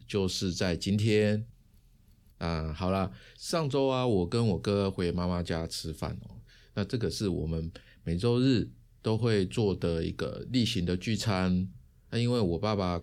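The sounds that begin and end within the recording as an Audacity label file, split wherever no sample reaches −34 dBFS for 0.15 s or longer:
2.410000	3.080000	sound
3.430000	6.180000	sound
6.770000	7.760000	sound
8.070000	8.640000	sound
9.050000	11.660000	sound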